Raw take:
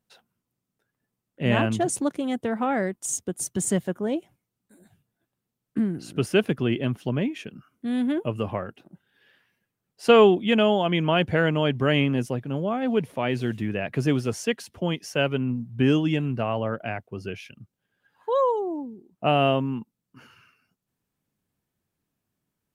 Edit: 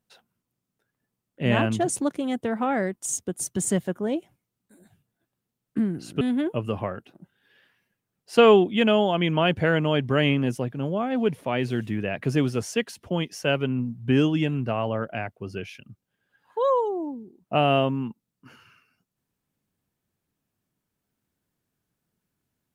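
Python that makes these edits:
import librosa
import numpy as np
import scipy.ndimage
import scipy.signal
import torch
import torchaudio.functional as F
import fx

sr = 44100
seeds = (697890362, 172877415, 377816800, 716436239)

y = fx.edit(x, sr, fx.cut(start_s=6.21, length_s=1.71), tone=tone)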